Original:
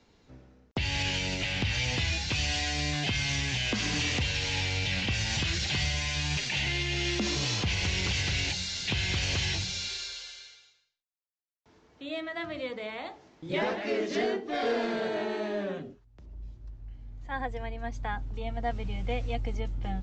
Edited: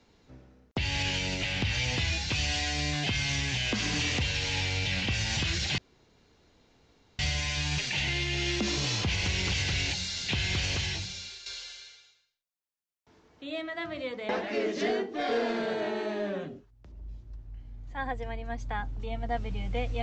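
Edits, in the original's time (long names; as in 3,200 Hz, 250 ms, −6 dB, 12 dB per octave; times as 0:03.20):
0:05.78: splice in room tone 1.41 s
0:09.19–0:10.05: fade out, to −11 dB
0:12.88–0:13.63: remove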